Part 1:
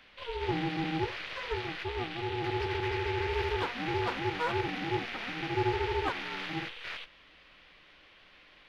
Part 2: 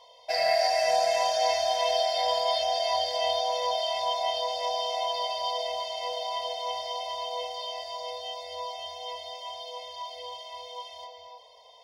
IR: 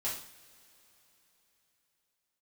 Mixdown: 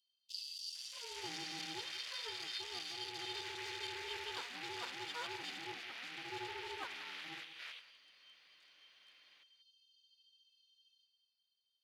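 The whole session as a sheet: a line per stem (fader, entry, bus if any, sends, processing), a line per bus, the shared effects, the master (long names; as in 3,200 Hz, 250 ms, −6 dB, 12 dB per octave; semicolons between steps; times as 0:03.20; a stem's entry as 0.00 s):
−13.5 dB, 0.75 s, no send, echo send −15 dB, spectral tilt +3.5 dB per octave
−3.0 dB, 0.00 s, no send, no echo send, adaptive Wiener filter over 25 samples; brickwall limiter −22.5 dBFS, peak gain reduction 8.5 dB; Chebyshev high-pass with heavy ripple 2,800 Hz, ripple 3 dB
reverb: not used
echo: single-tap delay 185 ms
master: high-pass filter 81 Hz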